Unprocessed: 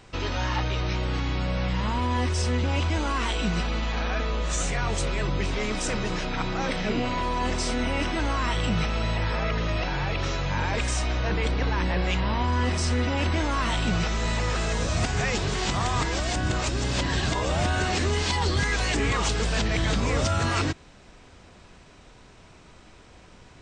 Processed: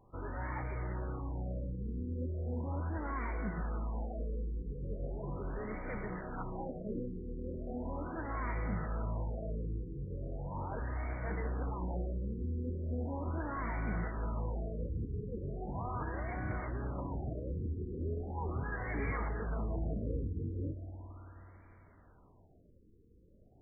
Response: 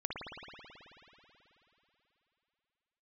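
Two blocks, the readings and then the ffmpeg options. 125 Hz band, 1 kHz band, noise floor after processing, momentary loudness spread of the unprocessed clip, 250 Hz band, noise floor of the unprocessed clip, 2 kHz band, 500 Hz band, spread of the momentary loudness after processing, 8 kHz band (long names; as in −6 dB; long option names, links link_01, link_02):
−11.0 dB, −14.5 dB, −62 dBFS, 3 LU, −11.5 dB, −51 dBFS, −17.5 dB, −12.0 dB, 5 LU, below −40 dB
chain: -filter_complex "[0:a]flanger=delay=8.2:depth=9.5:regen=-61:speed=1.7:shape=triangular,asplit=2[link_01][link_02];[1:a]atrim=start_sample=2205,adelay=127[link_03];[link_02][link_03]afir=irnorm=-1:irlink=0,volume=-16.5dB[link_04];[link_01][link_04]amix=inputs=2:normalize=0,afftfilt=real='re*lt(b*sr/1024,490*pow(2400/490,0.5+0.5*sin(2*PI*0.38*pts/sr)))':imag='im*lt(b*sr/1024,490*pow(2400/490,0.5+0.5*sin(2*PI*0.38*pts/sr)))':win_size=1024:overlap=0.75,volume=-7.5dB"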